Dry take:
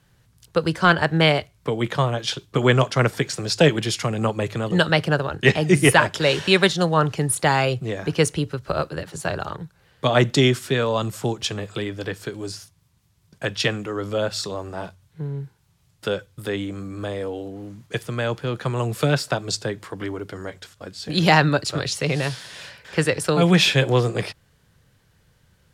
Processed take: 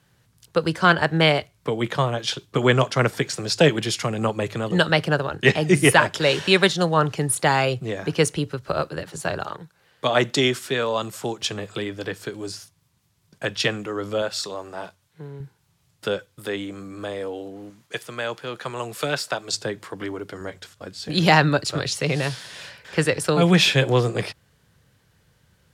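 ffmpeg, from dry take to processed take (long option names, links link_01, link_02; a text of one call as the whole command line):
ffmpeg -i in.wav -af "asetnsamples=nb_out_samples=441:pad=0,asendcmd='9.44 highpass f 340;11.41 highpass f 140;14.22 highpass f 430;15.4 highpass f 120;16.17 highpass f 270;17.7 highpass f 620;19.53 highpass f 170;20.41 highpass f 60',highpass=frequency=110:poles=1" out.wav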